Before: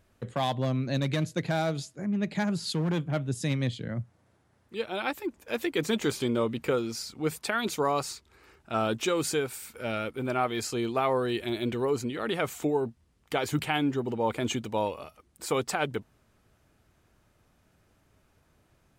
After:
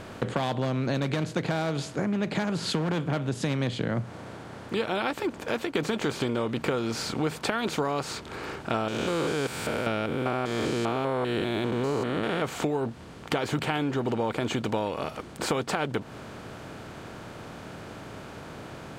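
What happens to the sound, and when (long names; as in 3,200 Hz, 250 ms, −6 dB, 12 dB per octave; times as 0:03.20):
0:05.27–0:05.75: fade out, to −18 dB
0:08.88–0:12.42: spectrum averaged block by block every 200 ms
whole clip: compressor on every frequency bin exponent 0.6; low-pass filter 4,000 Hz 6 dB per octave; downward compressor, threshold −30 dBFS; level +5.5 dB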